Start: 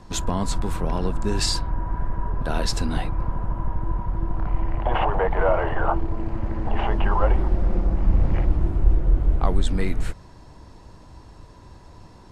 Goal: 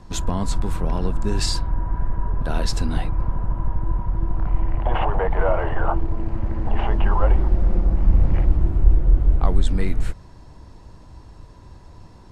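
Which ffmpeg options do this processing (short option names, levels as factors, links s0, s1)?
-af "lowshelf=f=160:g=5,volume=0.841"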